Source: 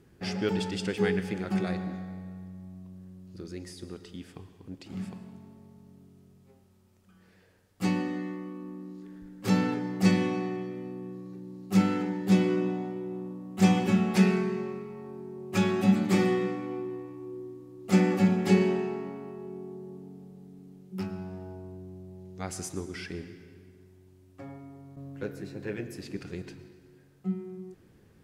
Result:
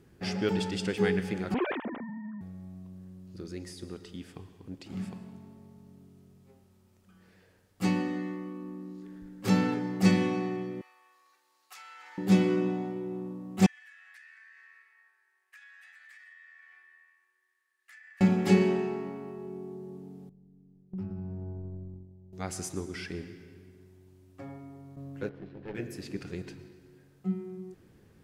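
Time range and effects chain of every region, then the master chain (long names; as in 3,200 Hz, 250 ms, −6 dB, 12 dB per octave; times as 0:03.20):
0:01.54–0:02.41: three sine waves on the formant tracks + high-shelf EQ 2,200 Hz +8.5 dB + saturating transformer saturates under 530 Hz
0:10.81–0:12.18: high-pass filter 1,000 Hz 24 dB per octave + downward compressor 12 to 1, threshold −45 dBFS
0:13.66–0:18.21: four-pole ladder high-pass 1,700 Hz, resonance 90% + downward compressor 8 to 1, threshold −51 dBFS + parametric band 9,100 Hz +5.5 dB 0.23 octaves
0:20.29–0:22.33: noise gate −43 dBFS, range −20 dB + spectral tilt −4.5 dB per octave + downward compressor 3 to 1, threshold −38 dBFS
0:25.29–0:25.75: gap after every zero crossing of 0.17 ms + tube saturation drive 28 dB, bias 0.8 + high-frequency loss of the air 350 metres
whole clip: no processing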